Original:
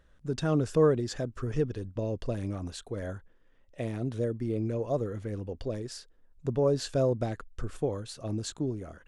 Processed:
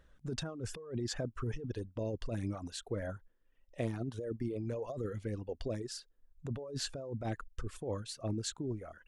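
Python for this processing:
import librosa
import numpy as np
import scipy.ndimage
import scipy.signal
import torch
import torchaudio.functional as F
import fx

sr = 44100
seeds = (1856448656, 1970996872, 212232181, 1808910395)

y = fx.over_compress(x, sr, threshold_db=-32.0, ratio=-1.0)
y = fx.dereverb_blind(y, sr, rt60_s=1.3)
y = F.gain(torch.from_numpy(y), -3.5).numpy()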